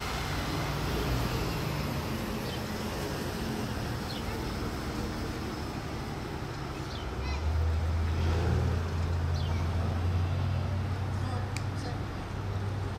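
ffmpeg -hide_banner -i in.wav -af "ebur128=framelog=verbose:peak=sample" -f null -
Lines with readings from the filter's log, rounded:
Integrated loudness:
  I:         -32.9 LUFS
  Threshold: -42.9 LUFS
Loudness range:
  LRA:         4.8 LU
  Threshold: -52.8 LUFS
  LRA low:   -35.5 LUFS
  LRA high:  -30.6 LUFS
Sample peak:
  Peak:      -17.2 dBFS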